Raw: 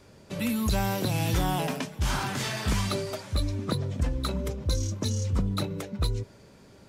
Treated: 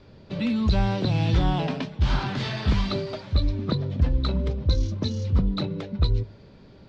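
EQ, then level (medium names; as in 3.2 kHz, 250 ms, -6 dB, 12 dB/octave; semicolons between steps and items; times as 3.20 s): four-pole ladder low-pass 4.9 kHz, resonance 45%; tilt EQ -2 dB/octave; hum notches 50/100 Hz; +8.5 dB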